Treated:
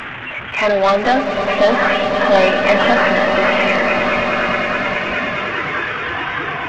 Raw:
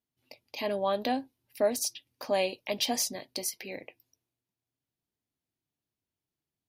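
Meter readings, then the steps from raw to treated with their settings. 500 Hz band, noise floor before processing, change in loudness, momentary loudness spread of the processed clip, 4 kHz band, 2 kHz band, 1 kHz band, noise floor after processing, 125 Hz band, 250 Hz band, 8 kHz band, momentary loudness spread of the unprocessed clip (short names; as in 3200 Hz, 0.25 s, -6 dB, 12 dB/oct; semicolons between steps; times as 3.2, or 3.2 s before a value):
+18.0 dB, under -85 dBFS, +16.0 dB, 8 LU, +13.5 dB, +28.0 dB, +21.5 dB, -28 dBFS, +22.0 dB, +17.5 dB, n/a, 15 LU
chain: delta modulation 16 kbps, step -36 dBFS; bell 1600 Hz +14 dB 1.9 oct; in parallel at -8 dB: sine folder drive 9 dB, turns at -13.5 dBFS; on the sum: swelling echo 0.105 s, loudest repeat 8, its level -11 dB; spectral noise reduction 8 dB; gain +6 dB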